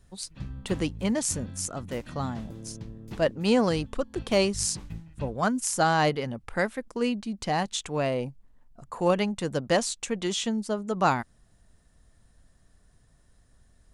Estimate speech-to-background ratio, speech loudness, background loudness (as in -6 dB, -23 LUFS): 14.5 dB, -28.0 LUFS, -42.5 LUFS